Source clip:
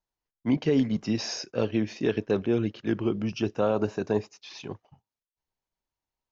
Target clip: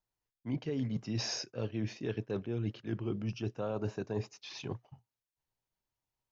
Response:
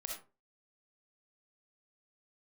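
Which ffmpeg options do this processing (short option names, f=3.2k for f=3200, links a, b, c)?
-af "equalizer=f=120:w=3.5:g=9.5,areverse,acompressor=threshold=-30dB:ratio=6,areverse,volume=-2dB"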